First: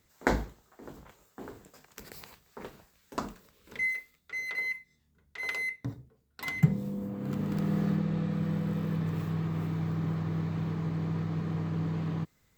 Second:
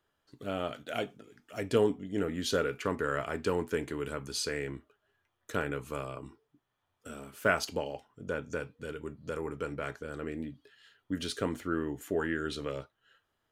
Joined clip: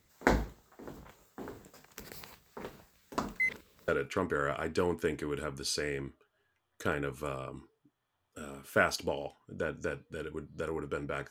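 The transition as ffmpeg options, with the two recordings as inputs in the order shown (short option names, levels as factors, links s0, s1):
-filter_complex "[0:a]apad=whole_dur=11.3,atrim=end=11.3,asplit=2[s0][s1];[s0]atrim=end=3.402[s2];[s1]atrim=start=3.398:end=3.882,asetpts=PTS-STARTPTS,areverse[s3];[1:a]atrim=start=2.568:end=9.99[s4];[s2][s3]acrossfade=d=0.004:c1=hsin:c2=hsin[s5];[s5][s4]acrossfade=d=0.004:c1=hsin:c2=hsin"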